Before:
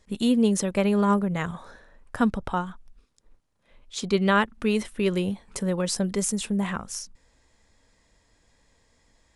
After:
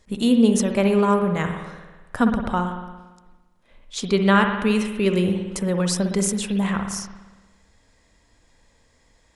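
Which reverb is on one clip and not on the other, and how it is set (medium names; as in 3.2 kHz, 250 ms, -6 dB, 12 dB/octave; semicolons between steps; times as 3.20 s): spring tank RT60 1.2 s, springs 56 ms, chirp 75 ms, DRR 5 dB; trim +3 dB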